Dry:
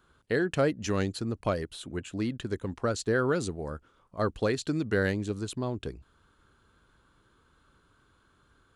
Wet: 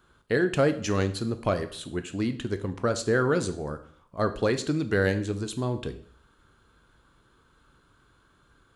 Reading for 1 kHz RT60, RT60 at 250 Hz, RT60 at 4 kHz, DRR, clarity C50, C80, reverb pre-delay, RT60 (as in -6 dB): 0.55 s, 0.55 s, 0.55 s, 8.5 dB, 14.0 dB, 17.0 dB, 5 ms, 0.55 s